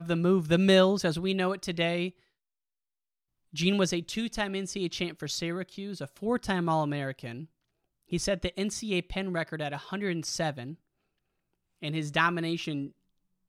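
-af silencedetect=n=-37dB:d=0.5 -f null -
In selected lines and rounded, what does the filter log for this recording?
silence_start: 2.09
silence_end: 3.54 | silence_duration: 1.45
silence_start: 7.44
silence_end: 8.12 | silence_duration: 0.69
silence_start: 10.73
silence_end: 11.83 | silence_duration: 1.10
silence_start: 12.87
silence_end: 13.49 | silence_duration: 0.62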